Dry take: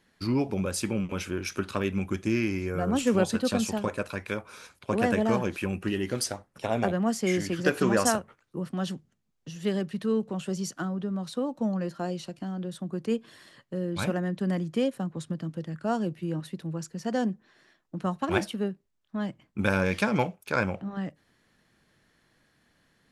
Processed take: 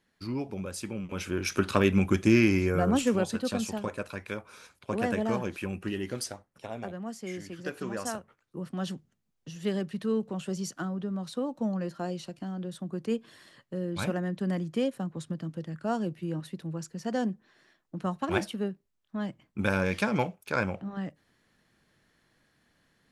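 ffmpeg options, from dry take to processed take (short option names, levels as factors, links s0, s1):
-af "volume=5.62,afade=t=in:st=1.02:d=0.72:silence=0.237137,afade=t=out:st=2.59:d=0.6:silence=0.334965,afade=t=out:st=6.04:d=0.73:silence=0.421697,afade=t=in:st=8.01:d=0.89:silence=0.334965"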